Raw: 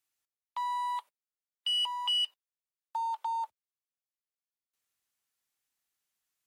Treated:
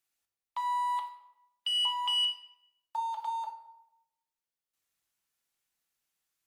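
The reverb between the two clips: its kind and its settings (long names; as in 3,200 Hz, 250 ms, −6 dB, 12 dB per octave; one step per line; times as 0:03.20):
rectangular room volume 320 cubic metres, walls mixed, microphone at 0.71 metres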